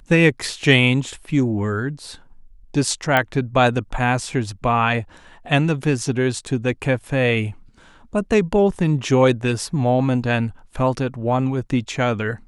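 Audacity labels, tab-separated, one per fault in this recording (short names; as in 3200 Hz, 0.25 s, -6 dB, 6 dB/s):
3.170000	3.170000	pop -5 dBFS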